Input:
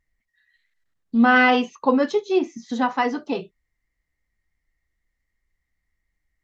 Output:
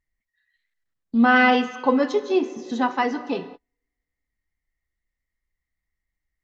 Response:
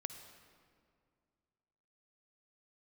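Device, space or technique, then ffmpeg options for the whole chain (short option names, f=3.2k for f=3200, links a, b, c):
keyed gated reverb: -filter_complex "[0:a]asplit=3[a][b][c];[1:a]atrim=start_sample=2205[d];[b][d]afir=irnorm=-1:irlink=0[e];[c]apad=whole_len=283957[f];[e][f]sidechaingate=range=-42dB:threshold=-45dB:ratio=16:detection=peak,volume=2.5dB[g];[a][g]amix=inputs=2:normalize=0,volume=-6.5dB"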